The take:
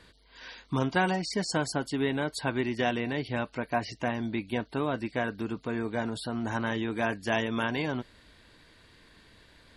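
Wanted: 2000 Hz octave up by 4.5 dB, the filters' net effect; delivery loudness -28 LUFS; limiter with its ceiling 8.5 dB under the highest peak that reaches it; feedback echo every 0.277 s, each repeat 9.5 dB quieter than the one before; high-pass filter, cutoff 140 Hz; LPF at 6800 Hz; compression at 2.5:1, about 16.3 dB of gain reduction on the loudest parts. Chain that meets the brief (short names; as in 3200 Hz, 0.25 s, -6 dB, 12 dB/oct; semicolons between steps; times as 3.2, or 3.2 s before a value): HPF 140 Hz; LPF 6800 Hz; bell 2000 Hz +6 dB; compressor 2.5:1, threshold -44 dBFS; limiter -31.5 dBFS; feedback echo 0.277 s, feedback 33%, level -9.5 dB; gain +16.5 dB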